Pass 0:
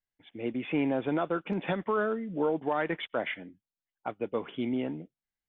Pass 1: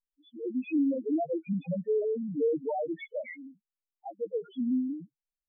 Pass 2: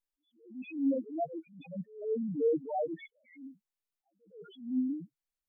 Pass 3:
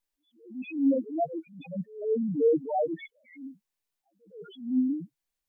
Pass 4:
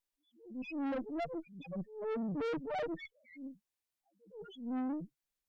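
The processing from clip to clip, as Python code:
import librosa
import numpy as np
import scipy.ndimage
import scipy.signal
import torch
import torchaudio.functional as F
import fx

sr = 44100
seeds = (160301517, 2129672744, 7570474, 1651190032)

y1 = fx.spec_topn(x, sr, count=1)
y1 = F.gain(torch.from_numpy(y1), 7.5).numpy()
y2 = fx.attack_slew(y1, sr, db_per_s=120.0)
y3 = fx.notch(y2, sr, hz=1300.0, q=12.0)
y3 = F.gain(torch.from_numpy(y3), 5.5).numpy()
y4 = fx.tube_stage(y3, sr, drive_db=32.0, bias=0.5)
y4 = F.gain(torch.from_numpy(y4), -2.0).numpy()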